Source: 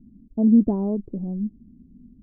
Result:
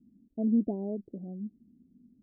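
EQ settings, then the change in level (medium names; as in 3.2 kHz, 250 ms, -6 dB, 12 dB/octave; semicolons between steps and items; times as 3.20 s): high-pass 380 Hz 6 dB/octave; Chebyshev low-pass 720 Hz, order 4; -4.5 dB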